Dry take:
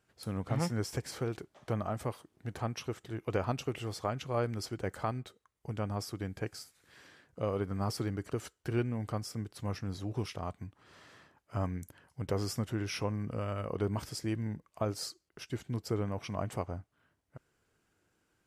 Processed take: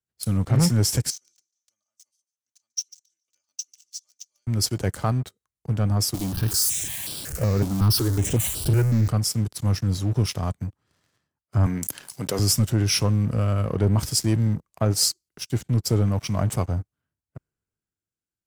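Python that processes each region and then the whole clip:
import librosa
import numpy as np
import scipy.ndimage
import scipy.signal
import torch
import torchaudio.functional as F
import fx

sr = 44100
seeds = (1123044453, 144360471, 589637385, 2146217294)

y = fx.chain(x, sr, fx.bandpass_q(hz=6100.0, q=6.6),
    fx.comb(ms=3.4, depth=0.89),
    fx.echo_feedback(ms=145, feedback_pct=32, wet_db=-14.0), at=(1.1, 4.47))
y = fx.chain(y, sr, fx.zero_step(step_db=-36.5),
    fx.phaser_held(hz=5.4, low_hz=450.0, high_hz=6600.0), at=(6.14, 9.08))
y = fx.chain(y, sr, fx.highpass(hz=190.0, slope=12),
    fx.low_shelf(hz=480.0, db=-5.5),
    fx.env_flatten(amount_pct=50), at=(11.66, 12.39))
y = fx.bass_treble(y, sr, bass_db=9, treble_db=12)
y = fx.leveller(y, sr, passes=3)
y = fx.band_widen(y, sr, depth_pct=40)
y = F.gain(torch.from_numpy(y), -3.5).numpy()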